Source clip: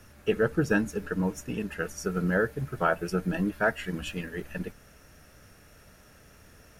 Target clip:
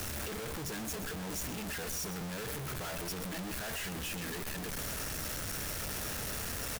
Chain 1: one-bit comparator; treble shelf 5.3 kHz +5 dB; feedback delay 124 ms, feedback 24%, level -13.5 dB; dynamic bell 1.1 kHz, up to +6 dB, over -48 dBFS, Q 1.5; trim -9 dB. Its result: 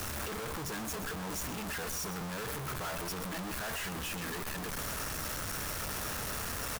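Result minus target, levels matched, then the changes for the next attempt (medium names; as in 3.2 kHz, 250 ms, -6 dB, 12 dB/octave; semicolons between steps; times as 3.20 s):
1 kHz band +3.5 dB
remove: dynamic bell 1.1 kHz, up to +6 dB, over -48 dBFS, Q 1.5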